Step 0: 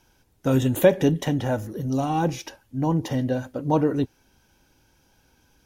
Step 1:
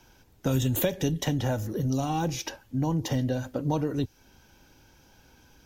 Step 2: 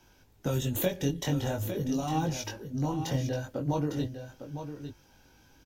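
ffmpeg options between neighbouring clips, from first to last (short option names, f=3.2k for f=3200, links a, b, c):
-filter_complex "[0:a]equalizer=f=9.7k:t=o:w=0.36:g=-8.5,acrossover=split=100|3500[a][b][c];[b]acompressor=threshold=-32dB:ratio=4[d];[a][d][c]amix=inputs=3:normalize=0,volume=4.5dB"
-af "flanger=delay=19:depth=3:speed=0.45,aecho=1:1:855:0.335"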